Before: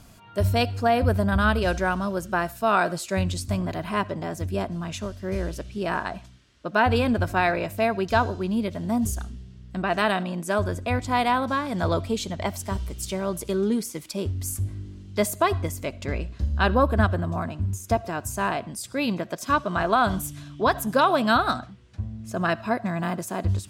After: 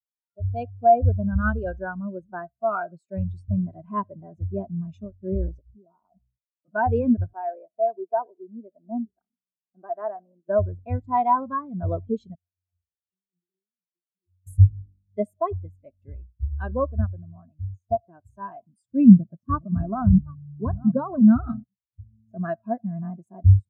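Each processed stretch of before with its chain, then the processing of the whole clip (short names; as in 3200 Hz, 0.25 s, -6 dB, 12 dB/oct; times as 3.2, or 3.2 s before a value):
5.59–6.68 compressor 16:1, threshold -36 dBFS + brick-wall FIR low-pass 1500 Hz + three-band expander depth 40%
7.33–10.49 HPF 370 Hz + tape spacing loss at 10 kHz 41 dB
12.35–14.47 compressor, threshold -29 dBFS + low shelf 500 Hz -11.5 dB + octave resonator F, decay 0.38 s
18.92–21.64 reverse delay 0.5 s, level -10 dB + tone controls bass +13 dB, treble -10 dB
whole clip: AGC gain up to 15 dB; spectral expander 2.5:1; gain -1 dB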